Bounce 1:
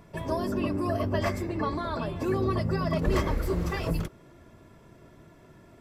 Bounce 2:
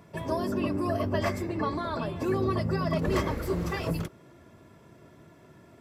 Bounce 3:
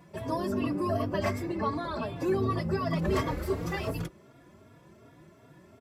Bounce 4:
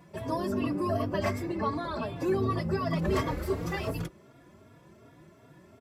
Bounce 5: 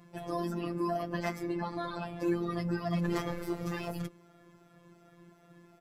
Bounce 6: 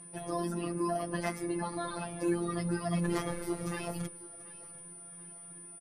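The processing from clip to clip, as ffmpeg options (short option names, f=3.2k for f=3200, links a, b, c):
-af "highpass=79"
-filter_complex "[0:a]asplit=2[a][b];[b]adelay=3.6,afreqshift=2.7[c];[a][c]amix=inputs=2:normalize=1,volume=1.5dB"
-af anull
-af "afftfilt=real='hypot(re,im)*cos(PI*b)':imag='0':win_size=1024:overlap=0.75"
-af "aresample=32000,aresample=44100,aeval=exprs='val(0)+0.00398*sin(2*PI*9400*n/s)':c=same,aecho=1:1:735|1470|2205:0.1|0.043|0.0185"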